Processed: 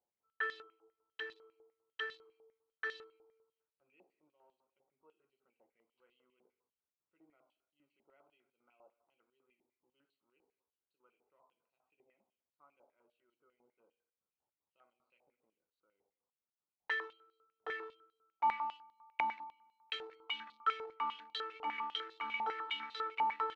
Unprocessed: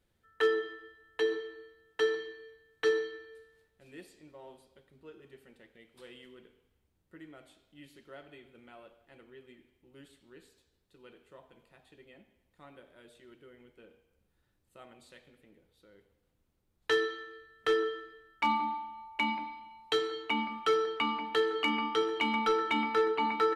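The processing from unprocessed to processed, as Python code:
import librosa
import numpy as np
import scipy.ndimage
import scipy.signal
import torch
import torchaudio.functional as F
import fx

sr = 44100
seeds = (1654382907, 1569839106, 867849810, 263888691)

y = fx.wiener(x, sr, points=25)
y = fx.filter_held_bandpass(y, sr, hz=10.0, low_hz=820.0, high_hz=3900.0)
y = y * 10.0 ** (1.5 / 20.0)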